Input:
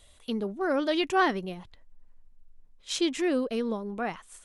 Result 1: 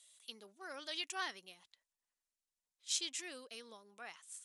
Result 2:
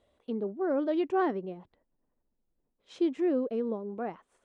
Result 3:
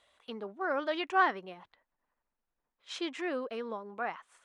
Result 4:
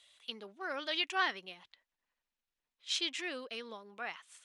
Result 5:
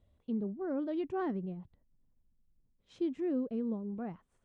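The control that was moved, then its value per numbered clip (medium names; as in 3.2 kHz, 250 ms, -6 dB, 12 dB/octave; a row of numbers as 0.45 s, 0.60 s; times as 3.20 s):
band-pass filter, frequency: 7.9 kHz, 390 Hz, 1.2 kHz, 3.1 kHz, 140 Hz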